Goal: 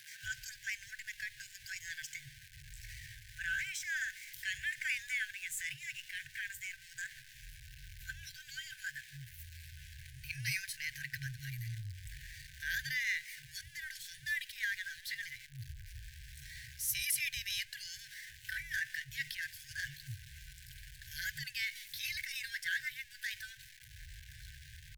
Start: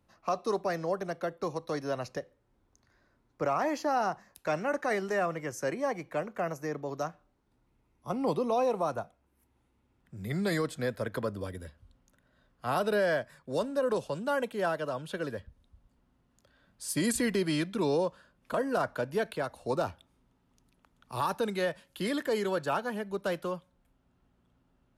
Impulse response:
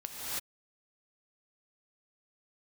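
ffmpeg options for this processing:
-filter_complex "[0:a]aeval=exprs='val(0)+0.5*0.0075*sgn(val(0))':c=same,asetrate=53981,aresample=44100,atempo=0.816958,afftfilt=real='re*(1-between(b*sr/4096,140,1500))':imag='im*(1-between(b*sr/4096,140,1500))':win_size=4096:overlap=0.75,acrossover=split=220[s0][s1];[s0]adelay=230[s2];[s2][s1]amix=inputs=2:normalize=0"

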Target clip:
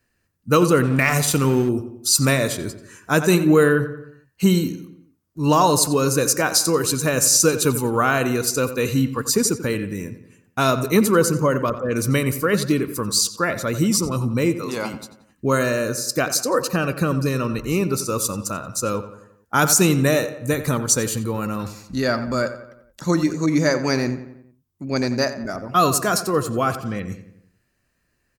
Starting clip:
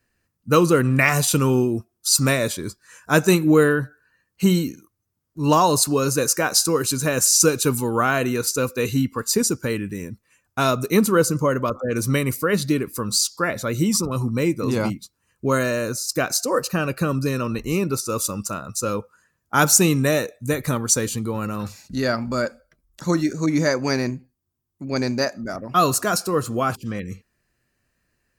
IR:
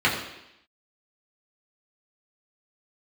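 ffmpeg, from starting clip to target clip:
-filter_complex "[0:a]asettb=1/sr,asplit=3[s0][s1][s2];[s0]atrim=end=14.544[s3];[s1]atrim=start=14.54:end=14.94,asetpts=PTS-STARTPTS,afade=t=in:d=0.004:c=qsin,afade=t=out:st=0.396:d=0.004:c=qsin,highpass=f=620:p=1[s4];[s2]atrim=start=14.936[s5];[s3][s4]acrossfade=d=0.004:c1=hsin:c2=qsin[s6];[s6][s5]acrossfade=d=0.004:c1=qsin:c2=hsin,asettb=1/sr,asplit=3[s7][s8][s9];[s7]atrim=end=20.994[s10];[s8]atrim=start=20.99:end=21.47,asetpts=PTS-STARTPTS,afade=t=in:d=0.004:c=qsin,afade=t=out:st=0.476:d=0.004:c=qsin,highshelf=f=11000:g=5.5[s11];[s9]atrim=start=21.466[s12];[s10][s11]acrossfade=d=0.004:c1=hsin:c2=qsin[s13];[s13][s12]acrossfade=d=0.004:c1=qsin:c2=hsin,asplit=2[s14][s15];[s15]adelay=89,lowpass=f=3200:p=1,volume=0.251,asplit=2[s16][s17];[s17]adelay=89,lowpass=f=3200:p=1,volume=0.52,asplit=2[s18][s19];[s19]adelay=89,lowpass=f=3200:p=1,volume=0.52,asplit=2[s20][s21];[s21]adelay=89,lowpass=f=3200:p=1,volume=0.52,asplit=2[s22][s23];[s23]adelay=89,lowpass=f=3200:p=1,volume=0.52[s24];[s14][s16][s18][s20][s22][s24]amix=inputs=6:normalize=0,asettb=1/sr,asplit=3[s25][s26][s27];[s25]atrim=end=0.834[s28];[s26]atrim=start=0.83:end=1.69,asetpts=PTS-STARTPTS,afade=t=in:d=0.004:c=qsin,afade=t=out:st=0.856:d=0.004:c=qsin,aeval=exprs='sgn(val(0))*max(abs(val(0))-0.0188,0)':c=same[s29];[s27]atrim=start=1.686[s30];[s28][s29]acrossfade=d=0.004:c1=hsin:c2=qsin[s31];[s31][s30]acrossfade=d=0.004:c1=qsin:c2=hsin,alimiter=level_in=1.78:limit=0.891:release=50:level=0:latency=1,volume=0.631"

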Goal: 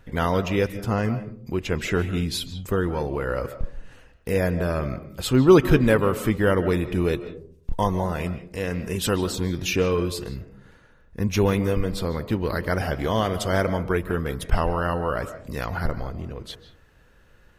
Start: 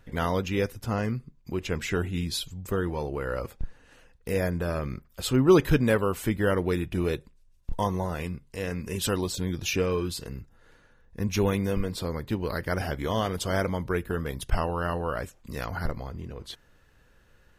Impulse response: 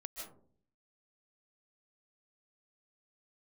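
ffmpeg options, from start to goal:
-filter_complex "[0:a]asplit=2[s0][s1];[1:a]atrim=start_sample=2205,lowpass=4300[s2];[s1][s2]afir=irnorm=-1:irlink=0,volume=0.596[s3];[s0][s3]amix=inputs=2:normalize=0,volume=1.26"

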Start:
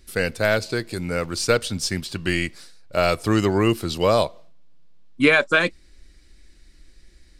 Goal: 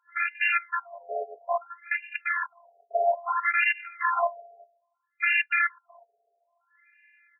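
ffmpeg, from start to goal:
-filter_complex "[0:a]acrossover=split=310 3300:gain=0.0891 1 0.0891[s0][s1][s2];[s0][s1][s2]amix=inputs=3:normalize=0,dynaudnorm=f=110:g=5:m=1.58,equalizer=f=160:t=o:w=0.33:g=11,equalizer=f=1250:t=o:w=0.33:g=-6,equalizer=f=2500:t=o:w=0.33:g=4,aresample=11025,aeval=exprs='(mod(5.62*val(0)+1,2)-1)/5.62':c=same,aresample=44100,afftfilt=real='hypot(re,im)*cos(PI*b)':imag='0':win_size=512:overlap=0.75,asplit=2[s3][s4];[s4]aeval=exprs='clip(val(0),-1,0.0531)':c=same,volume=0.251[s5];[s3][s5]amix=inputs=2:normalize=0,aeval=exprs='val(0)+0.00355*(sin(2*PI*60*n/s)+sin(2*PI*2*60*n/s)/2+sin(2*PI*3*60*n/s)/3+sin(2*PI*4*60*n/s)/4+sin(2*PI*5*60*n/s)/5)':c=same,asplit=2[s6][s7];[s7]adelay=370,highpass=300,lowpass=3400,asoftclip=type=hard:threshold=0.168,volume=0.0447[s8];[s6][s8]amix=inputs=2:normalize=0,afftfilt=real='re*between(b*sr/1024,550*pow(2100/550,0.5+0.5*sin(2*PI*0.6*pts/sr))/1.41,550*pow(2100/550,0.5+0.5*sin(2*PI*0.6*pts/sr))*1.41)':imag='im*between(b*sr/1024,550*pow(2100/550,0.5+0.5*sin(2*PI*0.6*pts/sr))/1.41,550*pow(2100/550,0.5+0.5*sin(2*PI*0.6*pts/sr))*1.41)':win_size=1024:overlap=0.75,volume=2"

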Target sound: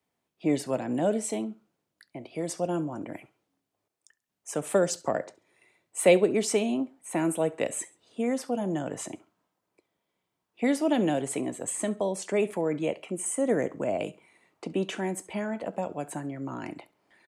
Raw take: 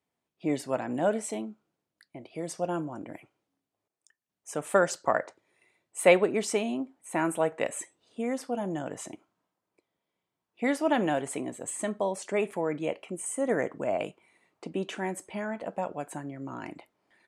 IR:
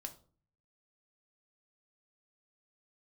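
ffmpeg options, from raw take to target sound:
-filter_complex "[0:a]acrossover=split=150|620|2600[s0][s1][s2][s3];[s2]acompressor=threshold=0.00794:ratio=6[s4];[s0][s1][s4][s3]amix=inputs=4:normalize=0,aecho=1:1:68|136:0.0841|0.0286,volume=1.5"

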